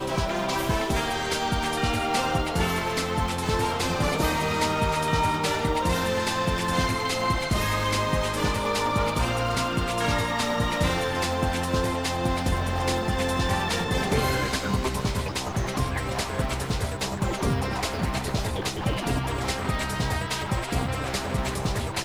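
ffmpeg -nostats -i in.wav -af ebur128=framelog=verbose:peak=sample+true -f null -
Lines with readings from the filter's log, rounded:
Integrated loudness:
  I:         -25.9 LUFS
  Threshold: -35.9 LUFS
Loudness range:
  LRA:         3.0 LU
  Threshold: -45.8 LUFS
  LRA low:   -27.7 LUFS
  LRA high:  -24.7 LUFS
Sample peak:
  Peak:      -12.1 dBFS
True peak:
  Peak:      -12.1 dBFS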